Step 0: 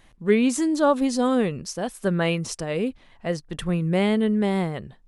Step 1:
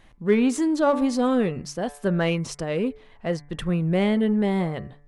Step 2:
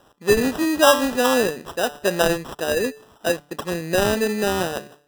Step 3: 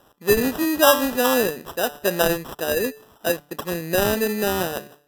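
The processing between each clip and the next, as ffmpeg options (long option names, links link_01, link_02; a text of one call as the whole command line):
ffmpeg -i in.wav -filter_complex "[0:a]highshelf=frequency=4800:gain=-8,bandreject=frequency=144.7:width_type=h:width=4,bandreject=frequency=289.4:width_type=h:width=4,bandreject=frequency=434.1:width_type=h:width=4,bandreject=frequency=578.8:width_type=h:width=4,bandreject=frequency=723.5:width_type=h:width=4,bandreject=frequency=868.2:width_type=h:width=4,bandreject=frequency=1012.9:width_type=h:width=4,bandreject=frequency=1157.6:width_type=h:width=4,bandreject=frequency=1302.3:width_type=h:width=4,bandreject=frequency=1447:width_type=h:width=4,bandreject=frequency=1591.7:width_type=h:width=4,bandreject=frequency=1736.4:width_type=h:width=4,bandreject=frequency=1881.1:width_type=h:width=4,bandreject=frequency=2025.8:width_type=h:width=4,bandreject=frequency=2170.5:width_type=h:width=4,bandreject=frequency=2315.2:width_type=h:width=4,asplit=2[link_01][link_02];[link_02]asoftclip=type=tanh:threshold=-25.5dB,volume=-6.5dB[link_03];[link_01][link_03]amix=inputs=2:normalize=0,volume=-1.5dB" out.wav
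ffmpeg -i in.wav -filter_complex "[0:a]highpass=440,asplit=2[link_01][link_02];[link_02]adynamicsmooth=sensitivity=7:basefreq=1900,volume=-0.5dB[link_03];[link_01][link_03]amix=inputs=2:normalize=0,acrusher=samples=20:mix=1:aa=0.000001,volume=2dB" out.wav
ffmpeg -i in.wav -af "equalizer=frequency=13000:width=3.3:gain=14.5,volume=-1dB" out.wav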